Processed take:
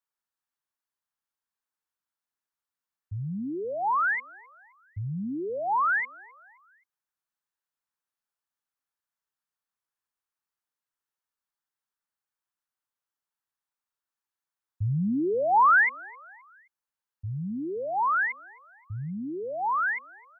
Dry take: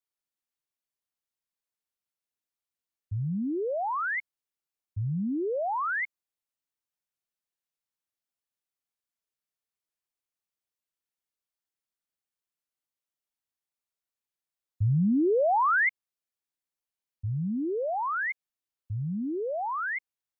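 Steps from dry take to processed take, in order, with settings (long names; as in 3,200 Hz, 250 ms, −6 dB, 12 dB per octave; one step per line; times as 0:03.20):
flat-topped bell 1,200 Hz +8 dB 1.3 octaves
on a send: repeating echo 262 ms, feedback 46%, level −24 dB
on the sum: level −2.5 dB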